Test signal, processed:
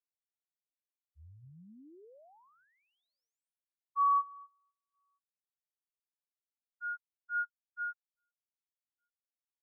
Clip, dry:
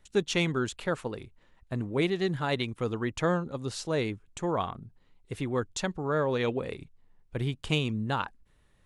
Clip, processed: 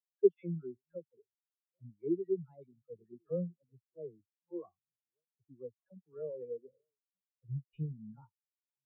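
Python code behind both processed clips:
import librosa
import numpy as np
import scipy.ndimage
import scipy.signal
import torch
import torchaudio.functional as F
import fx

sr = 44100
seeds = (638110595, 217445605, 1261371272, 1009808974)

y = fx.reverse_delay(x, sr, ms=648, wet_db=-12.5)
y = fx.dispersion(y, sr, late='lows', ms=91.0, hz=1000.0)
y = fx.spectral_expand(y, sr, expansion=4.0)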